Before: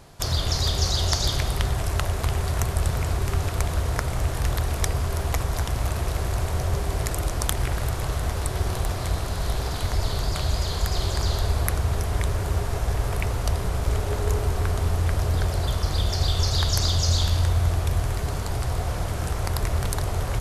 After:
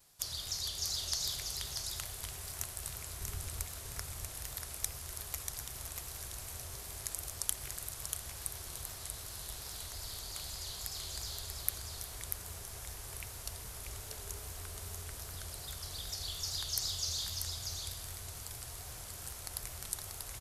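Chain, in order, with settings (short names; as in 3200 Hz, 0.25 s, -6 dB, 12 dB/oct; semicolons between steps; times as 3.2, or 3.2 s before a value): 3.2–3.63 low shelf 240 Hz +9 dB; vibrato 2.5 Hz 78 cents; pre-emphasis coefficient 0.9; echo 0.638 s -5 dB; gain -6 dB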